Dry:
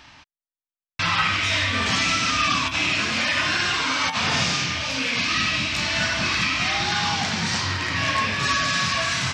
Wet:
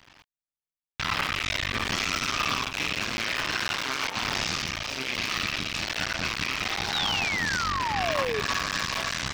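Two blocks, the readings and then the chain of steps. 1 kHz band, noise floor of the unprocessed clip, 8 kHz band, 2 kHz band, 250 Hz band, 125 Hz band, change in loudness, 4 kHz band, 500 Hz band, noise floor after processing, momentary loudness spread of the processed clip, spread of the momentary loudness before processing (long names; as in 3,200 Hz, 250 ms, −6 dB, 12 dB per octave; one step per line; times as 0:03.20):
−5.0 dB, below −85 dBFS, −6.0 dB, −6.0 dB, −7.0 dB, −8.0 dB, −6.0 dB, −6.0 dB, −1.0 dB, below −85 dBFS, 4 LU, 3 LU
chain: sub-harmonics by changed cycles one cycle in 2, muted
sound drawn into the spectrogram fall, 0:06.93–0:08.41, 400–4,000 Hz −26 dBFS
level −3.5 dB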